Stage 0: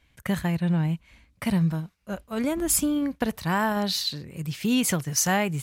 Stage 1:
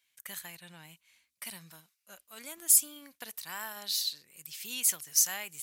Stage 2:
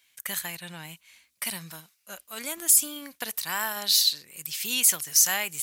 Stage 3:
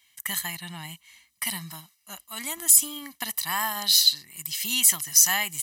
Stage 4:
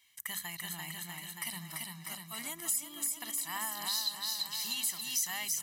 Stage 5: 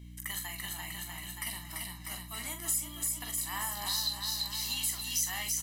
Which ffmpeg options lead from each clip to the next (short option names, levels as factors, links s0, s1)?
-af "aderivative"
-af "alimiter=level_in=7.08:limit=0.891:release=50:level=0:latency=1,volume=0.473"
-af "aecho=1:1:1:0.8"
-af "bandreject=f=50:t=h:w=6,bandreject=f=100:t=h:w=6,bandreject=f=150:t=h:w=6,bandreject=f=200:t=h:w=6,bandreject=f=250:t=h:w=6,aecho=1:1:340|646|921.4|1169|1392:0.631|0.398|0.251|0.158|0.1,acompressor=threshold=0.0178:ratio=2,volume=0.596"
-filter_complex "[0:a]highpass=240,aeval=exprs='val(0)+0.00398*(sin(2*PI*60*n/s)+sin(2*PI*2*60*n/s)/2+sin(2*PI*3*60*n/s)/3+sin(2*PI*4*60*n/s)/4+sin(2*PI*5*60*n/s)/5)':c=same,asplit=2[s0][s1];[s1]aecho=0:1:16|44:0.335|0.447[s2];[s0][s2]amix=inputs=2:normalize=0"